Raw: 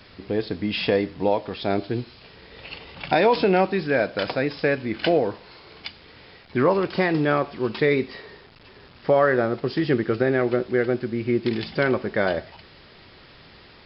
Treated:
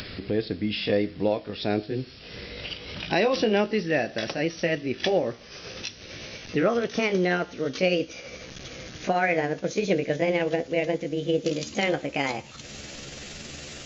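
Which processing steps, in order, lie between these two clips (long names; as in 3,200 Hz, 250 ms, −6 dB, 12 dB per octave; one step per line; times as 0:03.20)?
pitch glide at a constant tempo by +6.5 semitones starting unshifted
parametric band 950 Hz −10.5 dB 0.82 octaves
upward compression, threshold −28 dBFS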